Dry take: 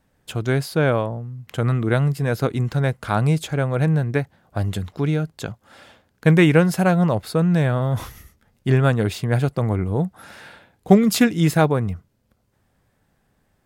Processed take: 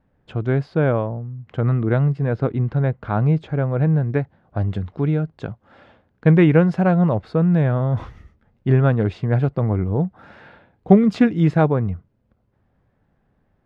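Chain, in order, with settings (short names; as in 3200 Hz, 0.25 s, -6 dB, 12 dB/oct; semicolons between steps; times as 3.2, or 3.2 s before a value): tape spacing loss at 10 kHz 39 dB, from 2.16 s at 10 kHz 45 dB, from 4.08 s at 10 kHz 35 dB; gain +2 dB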